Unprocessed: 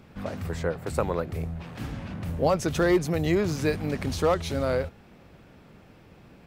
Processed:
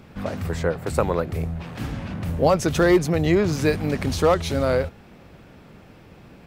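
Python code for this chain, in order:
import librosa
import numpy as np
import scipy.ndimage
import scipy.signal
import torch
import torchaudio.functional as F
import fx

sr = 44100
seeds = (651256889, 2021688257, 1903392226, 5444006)

y = fx.high_shelf(x, sr, hz=8600.0, db=-9.5, at=(3.06, 3.53))
y = F.gain(torch.from_numpy(y), 5.0).numpy()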